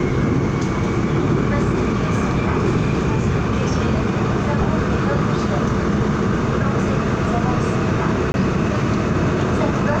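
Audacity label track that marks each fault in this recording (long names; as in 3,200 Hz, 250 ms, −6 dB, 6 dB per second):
8.320000	8.340000	drop-out 21 ms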